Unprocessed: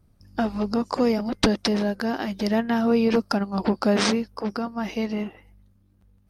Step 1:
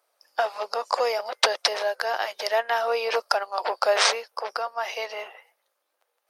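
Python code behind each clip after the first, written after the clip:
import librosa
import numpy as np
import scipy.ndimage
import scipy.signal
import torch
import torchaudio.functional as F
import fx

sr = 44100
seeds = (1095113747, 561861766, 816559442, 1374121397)

y = scipy.signal.sosfilt(scipy.signal.butter(6, 530.0, 'highpass', fs=sr, output='sos'), x)
y = F.gain(torch.from_numpy(y), 4.5).numpy()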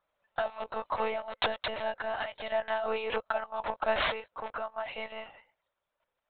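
y = fx.lpc_monotone(x, sr, seeds[0], pitch_hz=220.0, order=16)
y = F.gain(torch.from_numpy(y), -7.0).numpy()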